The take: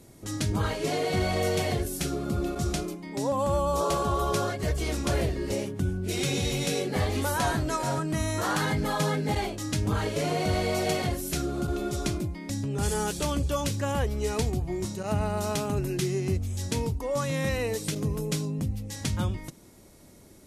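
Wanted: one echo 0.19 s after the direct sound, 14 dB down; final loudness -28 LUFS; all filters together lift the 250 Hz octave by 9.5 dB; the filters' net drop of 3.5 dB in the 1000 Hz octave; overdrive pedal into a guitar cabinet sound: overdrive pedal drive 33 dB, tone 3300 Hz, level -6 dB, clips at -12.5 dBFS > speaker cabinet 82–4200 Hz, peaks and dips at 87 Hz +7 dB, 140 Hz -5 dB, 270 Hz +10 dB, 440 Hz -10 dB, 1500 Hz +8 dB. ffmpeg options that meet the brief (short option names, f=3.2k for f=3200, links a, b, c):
-filter_complex "[0:a]equalizer=f=250:t=o:g=6.5,equalizer=f=1k:t=o:g=-6.5,aecho=1:1:190:0.2,asplit=2[a][b];[b]highpass=f=720:p=1,volume=33dB,asoftclip=type=tanh:threshold=-12.5dB[c];[a][c]amix=inputs=2:normalize=0,lowpass=f=3.3k:p=1,volume=-6dB,highpass=82,equalizer=f=87:t=q:w=4:g=7,equalizer=f=140:t=q:w=4:g=-5,equalizer=f=270:t=q:w=4:g=10,equalizer=f=440:t=q:w=4:g=-10,equalizer=f=1.5k:t=q:w=4:g=8,lowpass=f=4.2k:w=0.5412,lowpass=f=4.2k:w=1.3066,volume=-10dB"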